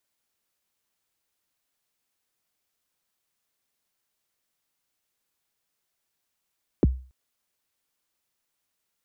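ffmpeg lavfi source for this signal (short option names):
-f lavfi -i "aevalsrc='0.251*pow(10,-3*t/0.38)*sin(2*PI*(470*0.025/log(64/470)*(exp(log(64/470)*min(t,0.025)/0.025)-1)+64*max(t-0.025,0)))':d=0.28:s=44100"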